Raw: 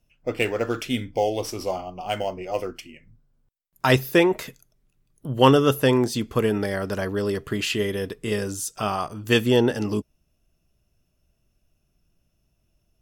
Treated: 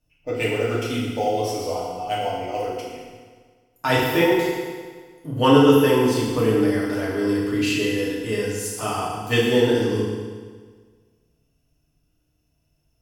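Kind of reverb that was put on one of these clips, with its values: FDN reverb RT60 1.6 s, low-frequency decay 1×, high-frequency decay 0.9×, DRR -6.5 dB; gain -6 dB

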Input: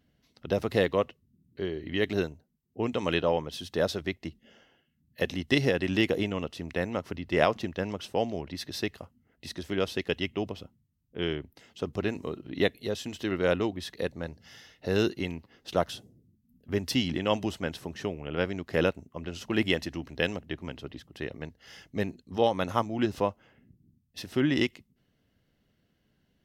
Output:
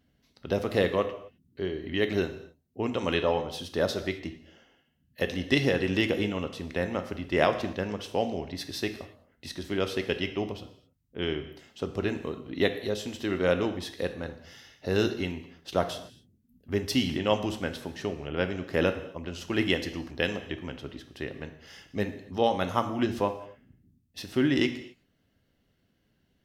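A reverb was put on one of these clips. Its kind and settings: non-linear reverb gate 0.29 s falling, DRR 7.5 dB

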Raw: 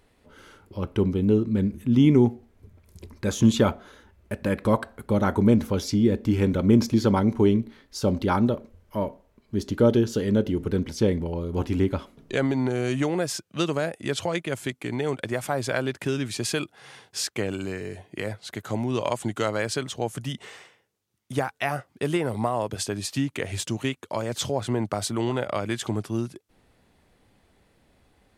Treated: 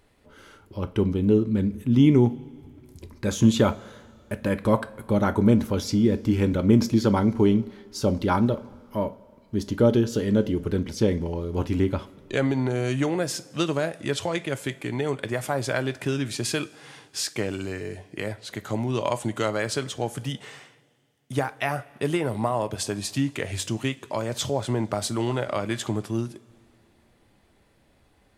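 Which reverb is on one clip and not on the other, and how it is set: two-slope reverb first 0.27 s, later 2.3 s, from -18 dB, DRR 11.5 dB

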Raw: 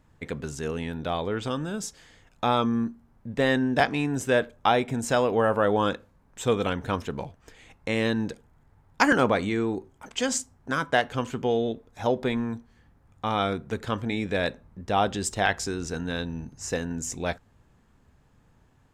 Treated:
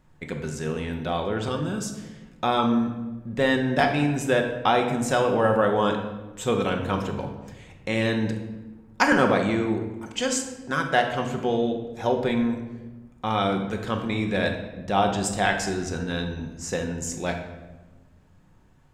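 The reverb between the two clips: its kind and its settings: shoebox room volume 690 m³, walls mixed, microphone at 1 m

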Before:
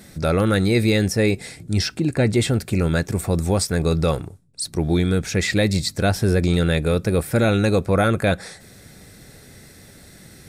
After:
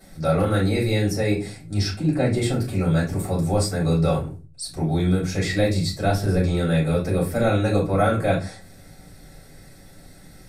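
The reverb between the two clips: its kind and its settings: shoebox room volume 130 m³, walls furnished, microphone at 5.3 m; gain -14 dB

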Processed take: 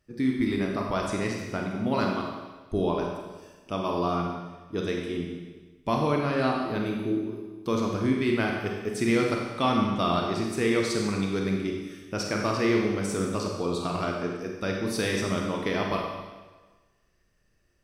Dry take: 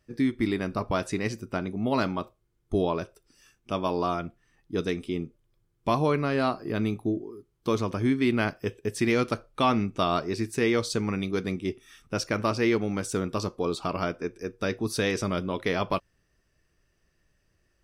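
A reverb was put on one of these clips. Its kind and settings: Schroeder reverb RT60 1.3 s, combs from 31 ms, DRR 0 dB; gain -2.5 dB

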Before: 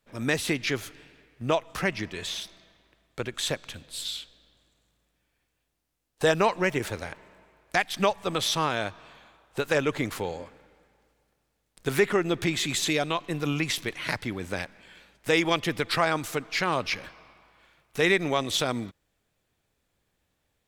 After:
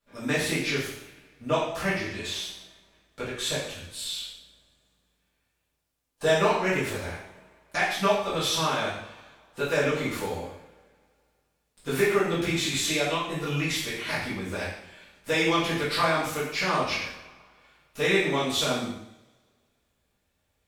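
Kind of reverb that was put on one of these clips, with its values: two-slope reverb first 0.7 s, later 2.1 s, from -27 dB, DRR -10 dB; gain -9.5 dB

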